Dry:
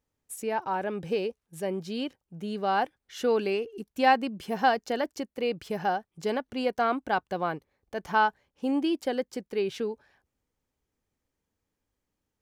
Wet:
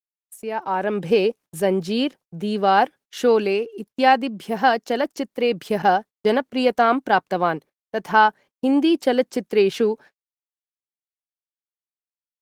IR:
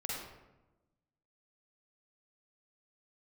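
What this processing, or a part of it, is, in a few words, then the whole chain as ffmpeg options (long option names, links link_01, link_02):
video call: -filter_complex "[0:a]asettb=1/sr,asplit=3[link_01][link_02][link_03];[link_01]atrim=end=5.824[link_04];[link_02]atrim=start=5.82:end=6.96,asetpts=PTS-STARTPTS,afade=type=in:duration=0.004:curve=qsin,afade=type=out:start_time=1.136:duration=0.004:curve=qsin,agate=range=-47dB:threshold=-41dB:ratio=16:detection=peak[link_05];[link_03]atrim=start=6.956[link_06];[link_04][link_05]acrossfade=duration=0.004:curve1=hsin:curve2=qsin[link_07];[link_07][link_06]acrossfade=duration=0.004:curve1=qsin:curve2=hsin,highpass=frequency=150:width=0.5412,highpass=frequency=150:width=1.3066,dynaudnorm=framelen=120:gausssize=13:maxgain=13dB,agate=range=-59dB:threshold=-39dB:ratio=16:detection=peak,volume=-1dB" -ar 48000 -c:a libopus -b:a 20k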